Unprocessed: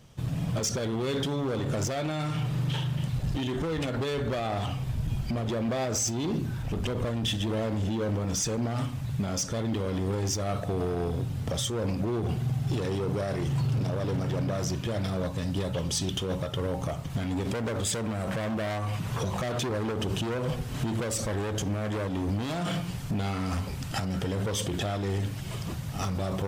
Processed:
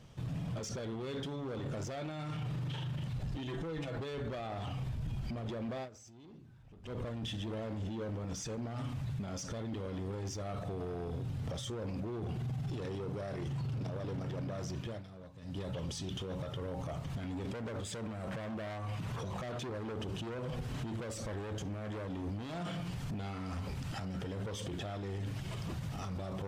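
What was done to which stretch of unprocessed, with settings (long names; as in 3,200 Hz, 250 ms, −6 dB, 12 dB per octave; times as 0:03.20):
0:03.47–0:03.99: comb filter 6.1 ms, depth 82%
0:05.61–0:07.12: duck −24 dB, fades 0.29 s
0:14.62–0:15.83: duck −19.5 dB, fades 0.42 s
whole clip: brickwall limiter −30 dBFS; high-shelf EQ 8,200 Hz −11 dB; level −1.5 dB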